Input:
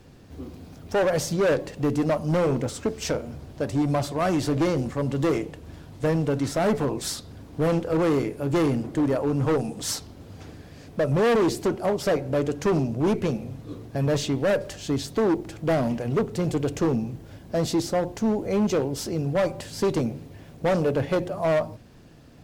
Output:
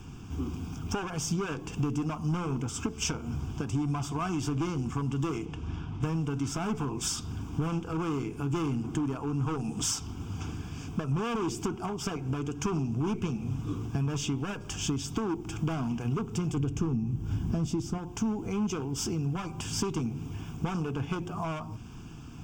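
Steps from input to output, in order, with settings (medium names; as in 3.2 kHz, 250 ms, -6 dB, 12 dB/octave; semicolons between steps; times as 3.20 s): 5.45–6.02 s: low-pass 6.5 kHz -> 2.9 kHz 12 dB/octave; 16.57–17.98 s: bass shelf 370 Hz +11 dB; compression 10:1, threshold -32 dBFS, peak gain reduction 19 dB; static phaser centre 2.8 kHz, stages 8; trim +7.5 dB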